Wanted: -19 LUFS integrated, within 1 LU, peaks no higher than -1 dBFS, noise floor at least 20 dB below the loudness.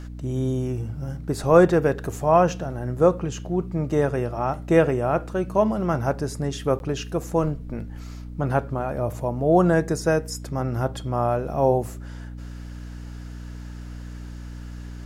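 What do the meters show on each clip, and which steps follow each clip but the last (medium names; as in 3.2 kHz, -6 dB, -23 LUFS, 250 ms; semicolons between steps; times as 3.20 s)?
dropouts 1; longest dropout 11 ms; hum 60 Hz; highest harmonic 300 Hz; hum level -34 dBFS; loudness -23.0 LUFS; peak level -4.0 dBFS; loudness target -19.0 LUFS
-> interpolate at 6.79 s, 11 ms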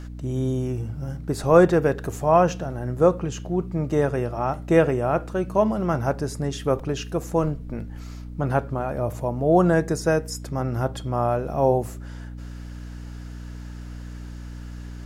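dropouts 0; hum 60 Hz; highest harmonic 300 Hz; hum level -34 dBFS
-> de-hum 60 Hz, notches 5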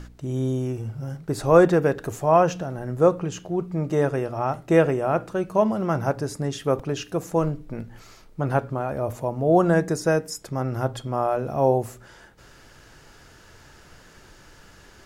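hum not found; loudness -23.5 LUFS; peak level -4.0 dBFS; loudness target -19.0 LUFS
-> trim +4.5 dB; peak limiter -1 dBFS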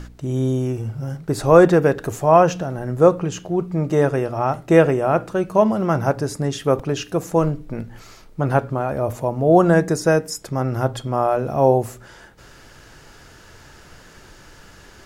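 loudness -19.0 LUFS; peak level -1.0 dBFS; noise floor -46 dBFS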